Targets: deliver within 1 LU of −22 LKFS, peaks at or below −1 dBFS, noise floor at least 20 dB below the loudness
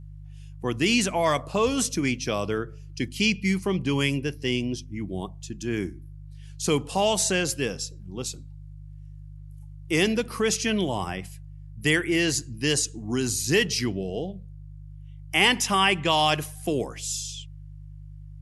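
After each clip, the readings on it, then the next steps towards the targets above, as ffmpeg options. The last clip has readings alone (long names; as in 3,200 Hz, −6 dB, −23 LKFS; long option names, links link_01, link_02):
mains hum 50 Hz; hum harmonics up to 150 Hz; level of the hum −40 dBFS; integrated loudness −25.5 LKFS; sample peak −5.5 dBFS; target loudness −22.0 LKFS
→ -af "bandreject=frequency=50:width_type=h:width=4,bandreject=frequency=100:width_type=h:width=4,bandreject=frequency=150:width_type=h:width=4"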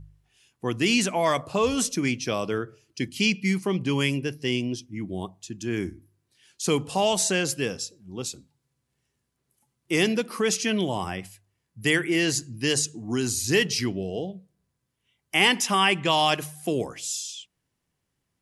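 mains hum none found; integrated loudness −25.5 LKFS; sample peak −5.5 dBFS; target loudness −22.0 LKFS
→ -af "volume=3.5dB"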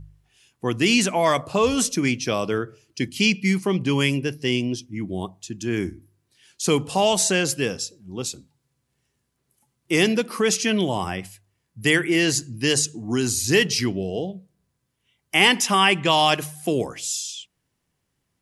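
integrated loudness −22.0 LKFS; sample peak −2.0 dBFS; background noise floor −76 dBFS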